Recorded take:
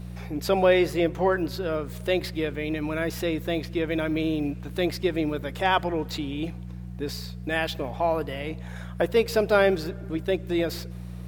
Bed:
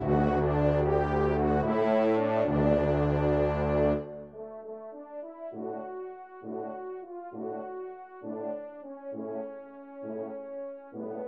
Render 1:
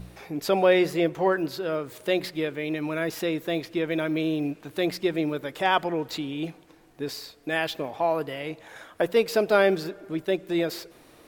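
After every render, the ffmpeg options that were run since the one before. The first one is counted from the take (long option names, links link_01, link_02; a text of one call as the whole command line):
ffmpeg -i in.wav -af "bandreject=frequency=60:width_type=h:width=4,bandreject=frequency=120:width_type=h:width=4,bandreject=frequency=180:width_type=h:width=4" out.wav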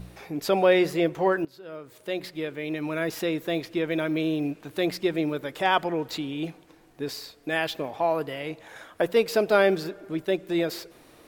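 ffmpeg -i in.wav -filter_complex "[0:a]asplit=2[link_01][link_02];[link_01]atrim=end=1.45,asetpts=PTS-STARTPTS,afade=type=out:start_time=1.446:duration=0.004:curve=hsin:silence=0.112202[link_03];[link_02]atrim=start=1.45,asetpts=PTS-STARTPTS,afade=type=in:duration=1.56:silence=0.112202[link_04];[link_03][link_04]concat=n=2:v=0:a=1" out.wav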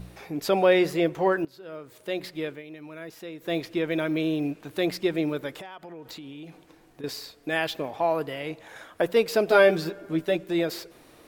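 ffmpeg -i in.wav -filter_complex "[0:a]asettb=1/sr,asplit=3[link_01][link_02][link_03];[link_01]atrim=end=5.554[link_04];[link_02]atrim=start=5.55:end=7.04,asetpts=PTS-STARTPTS,afade=type=in:duration=0.004:curve=qsin,afade=type=out:start_time=1.486:duration=0.004:curve=qsin,acompressor=threshold=-37dB:ratio=16:attack=3.2:release=140:knee=1:detection=peak[link_05];[link_03]atrim=start=7.036[link_06];[link_04][link_05]acrossfade=duration=0.004:curve1=hsin:curve2=qsin[link_07];[link_07][link_06]acrossfade=duration=0.004:curve1=qsin:curve2=hsin,asettb=1/sr,asplit=3[link_08][link_09][link_10];[link_08]atrim=end=9.464[link_11];[link_09]atrim=start=9.46:end=10.44,asetpts=PTS-STARTPTS,afade=type=in:duration=0.004:curve=qsin,afade=type=out:start_time=0.976:duration=0.004:curve=qsin,asplit=2[link_12][link_13];[link_13]adelay=12,volume=-3dB[link_14];[link_12][link_14]amix=inputs=2:normalize=0,atrim=end_sample=43218[link_15];[link_10]atrim=start=10.436[link_16];[link_11][link_15]acrossfade=duration=0.004:curve1=hsin:curve2=qsin[link_17];[link_17][link_16]acrossfade=duration=0.004:curve1=qsin:curve2=hsin,asplit=3[link_18][link_19][link_20];[link_18]atrim=end=2.63,asetpts=PTS-STARTPTS,afade=type=out:start_time=2.5:duration=0.13:silence=0.251189[link_21];[link_19]atrim=start=2.63:end=3.39,asetpts=PTS-STARTPTS,volume=-12dB[link_22];[link_20]atrim=start=3.39,asetpts=PTS-STARTPTS,afade=type=in:duration=0.13:silence=0.251189[link_23];[link_21][link_22][link_23]concat=n=3:v=0:a=1" out.wav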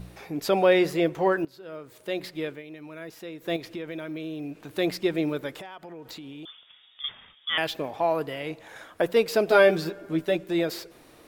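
ffmpeg -i in.wav -filter_complex "[0:a]asettb=1/sr,asplit=3[link_01][link_02][link_03];[link_01]atrim=end=3.564[link_04];[link_02]atrim=start=3.56:end=4.78,asetpts=PTS-STARTPTS,afade=type=in:duration=0.004:curve=qsin,afade=type=out:start_time=1.216:duration=0.004:curve=qsin,acompressor=threshold=-35dB:ratio=2.5:attack=3.2:release=140:knee=1:detection=peak[link_05];[link_03]atrim=start=4.776[link_06];[link_04][link_05]acrossfade=duration=0.004:curve1=hsin:curve2=qsin[link_07];[link_07][link_06]acrossfade=duration=0.004:curve1=qsin:curve2=hsin,asettb=1/sr,asplit=3[link_08][link_09][link_10];[link_08]atrim=end=6.454[link_11];[link_09]atrim=start=6.45:end=7.58,asetpts=PTS-STARTPTS,afade=type=in:duration=0.004:curve=qsin,afade=type=out:start_time=1.126:duration=0.004:curve=qsin,lowpass=frequency=3100:width_type=q:width=0.5098,lowpass=frequency=3100:width_type=q:width=0.6013,lowpass=frequency=3100:width_type=q:width=0.9,lowpass=frequency=3100:width_type=q:width=2.563,afreqshift=-3700[link_12];[link_10]atrim=start=7.576[link_13];[link_11][link_12]acrossfade=duration=0.004:curve1=hsin:curve2=qsin[link_14];[link_14][link_13]acrossfade=duration=0.004:curve1=qsin:curve2=hsin" out.wav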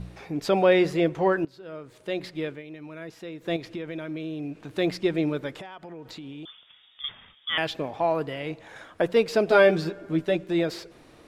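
ffmpeg -i in.wav -af "lowpass=8900,bass=frequency=250:gain=4,treble=frequency=4000:gain=-2" out.wav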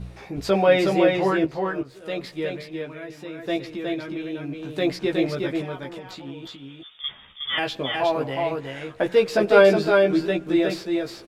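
ffmpeg -i in.wav -filter_complex "[0:a]asplit=2[link_01][link_02];[link_02]adelay=15,volume=-3dB[link_03];[link_01][link_03]amix=inputs=2:normalize=0,asplit=2[link_04][link_05];[link_05]aecho=0:1:365:0.668[link_06];[link_04][link_06]amix=inputs=2:normalize=0" out.wav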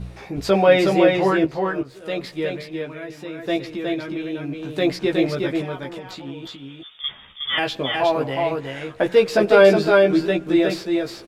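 ffmpeg -i in.wav -af "volume=3dB,alimiter=limit=-2dB:level=0:latency=1" out.wav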